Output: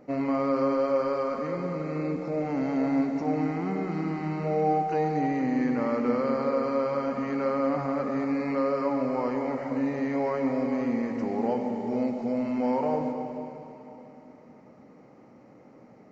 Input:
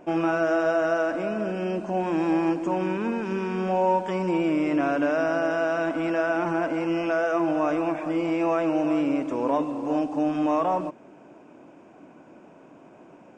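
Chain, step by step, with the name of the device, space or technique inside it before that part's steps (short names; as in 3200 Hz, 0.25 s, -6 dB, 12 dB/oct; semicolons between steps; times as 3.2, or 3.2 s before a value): slowed and reverbed (varispeed -17%; reverb RT60 3.3 s, pre-delay 86 ms, DRR 5 dB); gain -4 dB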